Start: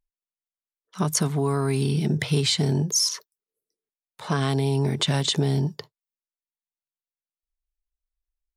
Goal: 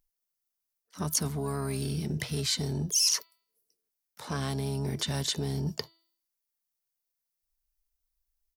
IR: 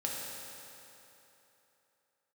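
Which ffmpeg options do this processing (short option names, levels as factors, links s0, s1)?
-filter_complex "[0:a]asplit=3[s0][s1][s2];[s1]asetrate=22050,aresample=44100,atempo=2,volume=0.2[s3];[s2]asetrate=66075,aresample=44100,atempo=0.66742,volume=0.141[s4];[s0][s3][s4]amix=inputs=3:normalize=0,areverse,acompressor=threshold=0.0282:ratio=6,areverse,bandreject=f=330.2:t=h:w=4,bandreject=f=660.4:t=h:w=4,bandreject=f=990.6:t=h:w=4,bandreject=f=1320.8:t=h:w=4,bandreject=f=1651:t=h:w=4,bandreject=f=1981.2:t=h:w=4,bandreject=f=2311.4:t=h:w=4,bandreject=f=2641.6:t=h:w=4,bandreject=f=2971.8:t=h:w=4,bandreject=f=3302:t=h:w=4,bandreject=f=3632.2:t=h:w=4,bandreject=f=3962.4:t=h:w=4,bandreject=f=4292.6:t=h:w=4,bandreject=f=4622.8:t=h:w=4,aexciter=amount=2.3:drive=4.4:freq=4600,volume=1.19"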